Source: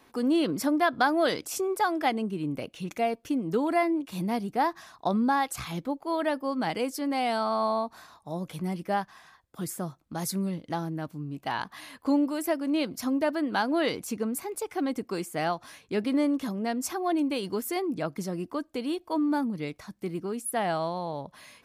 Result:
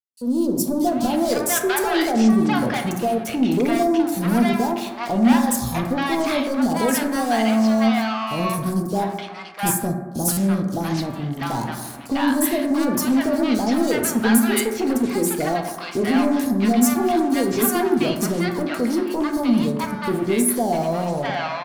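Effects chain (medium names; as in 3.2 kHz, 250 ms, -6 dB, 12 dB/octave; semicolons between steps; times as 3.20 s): fade-in on the opening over 0.93 s; gate -47 dBFS, range -13 dB; treble shelf 6.2 kHz +8 dB; waveshaping leveller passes 5; three bands offset in time highs, lows, mids 40/690 ms, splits 830/4800 Hz; reverberation RT60 1.3 s, pre-delay 4 ms, DRR 3.5 dB; buffer glitch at 10.32 s, samples 256, times 8; trim -6 dB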